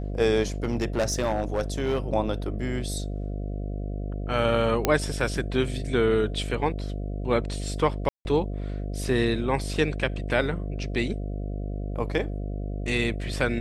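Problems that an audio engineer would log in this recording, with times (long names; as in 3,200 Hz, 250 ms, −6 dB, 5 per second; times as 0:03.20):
mains buzz 50 Hz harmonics 14 −31 dBFS
0:00.64–0:01.98: clipping −20 dBFS
0:04.85: click −6 dBFS
0:08.09–0:08.25: drop-out 161 ms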